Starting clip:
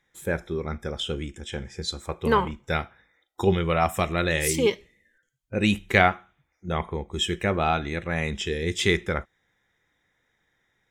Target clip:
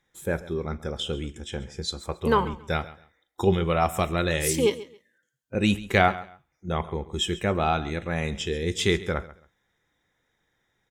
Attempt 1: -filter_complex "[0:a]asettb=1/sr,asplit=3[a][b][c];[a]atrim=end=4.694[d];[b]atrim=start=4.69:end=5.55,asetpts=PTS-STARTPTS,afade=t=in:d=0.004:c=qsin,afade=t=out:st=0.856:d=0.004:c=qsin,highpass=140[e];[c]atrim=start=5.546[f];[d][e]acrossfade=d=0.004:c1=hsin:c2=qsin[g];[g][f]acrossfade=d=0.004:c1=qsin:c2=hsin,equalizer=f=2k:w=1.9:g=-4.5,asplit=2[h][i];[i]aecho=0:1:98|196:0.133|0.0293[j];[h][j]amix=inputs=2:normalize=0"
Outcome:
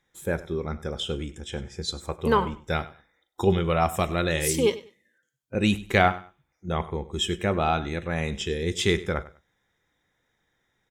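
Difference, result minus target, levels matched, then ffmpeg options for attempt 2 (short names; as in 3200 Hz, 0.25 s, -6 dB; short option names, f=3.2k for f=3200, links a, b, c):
echo 38 ms early
-filter_complex "[0:a]asettb=1/sr,asplit=3[a][b][c];[a]atrim=end=4.694[d];[b]atrim=start=4.69:end=5.55,asetpts=PTS-STARTPTS,afade=t=in:d=0.004:c=qsin,afade=t=out:st=0.856:d=0.004:c=qsin,highpass=140[e];[c]atrim=start=5.546[f];[d][e]acrossfade=d=0.004:c1=hsin:c2=qsin[g];[g][f]acrossfade=d=0.004:c1=qsin:c2=hsin,equalizer=f=2k:w=1.9:g=-4.5,asplit=2[h][i];[i]aecho=0:1:136|272:0.133|0.0293[j];[h][j]amix=inputs=2:normalize=0"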